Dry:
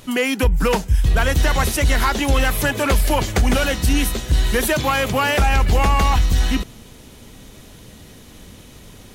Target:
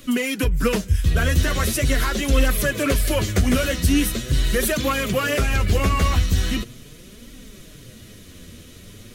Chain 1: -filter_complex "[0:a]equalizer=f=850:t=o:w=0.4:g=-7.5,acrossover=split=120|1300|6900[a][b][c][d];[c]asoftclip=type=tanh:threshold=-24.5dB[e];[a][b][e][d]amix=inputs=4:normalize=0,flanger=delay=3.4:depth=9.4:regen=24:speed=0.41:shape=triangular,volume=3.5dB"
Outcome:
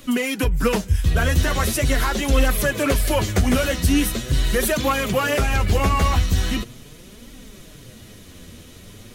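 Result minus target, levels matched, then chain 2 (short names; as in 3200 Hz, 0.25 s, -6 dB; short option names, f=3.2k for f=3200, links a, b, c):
1000 Hz band +3.0 dB
-filter_complex "[0:a]equalizer=f=850:t=o:w=0.4:g=-17,acrossover=split=120|1300|6900[a][b][c][d];[c]asoftclip=type=tanh:threshold=-24.5dB[e];[a][b][e][d]amix=inputs=4:normalize=0,flanger=delay=3.4:depth=9.4:regen=24:speed=0.41:shape=triangular,volume=3.5dB"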